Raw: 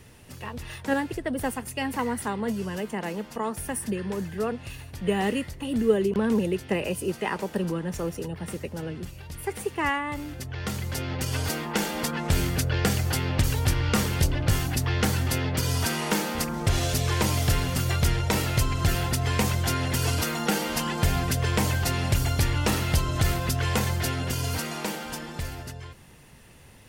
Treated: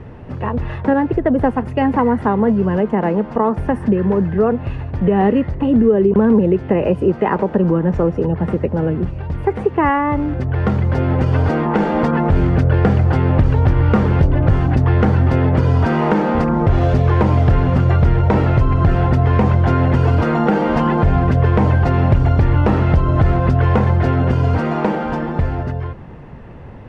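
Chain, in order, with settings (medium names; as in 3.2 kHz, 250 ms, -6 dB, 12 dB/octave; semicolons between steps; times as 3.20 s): low-pass 1.1 kHz 12 dB/octave; compression 2:1, threshold -30 dBFS, peak gain reduction 8.5 dB; loudness maximiser +20.5 dB; trim -3.5 dB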